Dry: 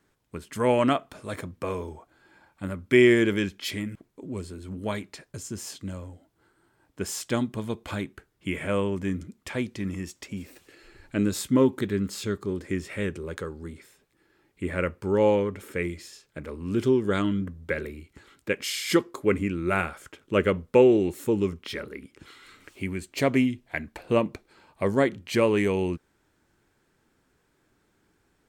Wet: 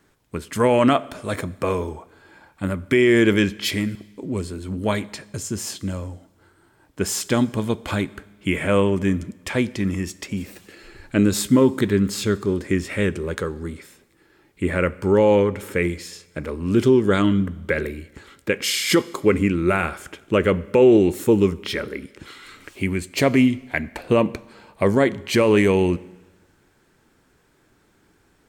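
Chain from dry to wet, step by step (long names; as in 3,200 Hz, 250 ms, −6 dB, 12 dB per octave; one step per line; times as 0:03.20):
brickwall limiter −14.5 dBFS, peak gain reduction 8.5 dB
four-comb reverb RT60 1.2 s, combs from 30 ms, DRR 19.5 dB
level +8 dB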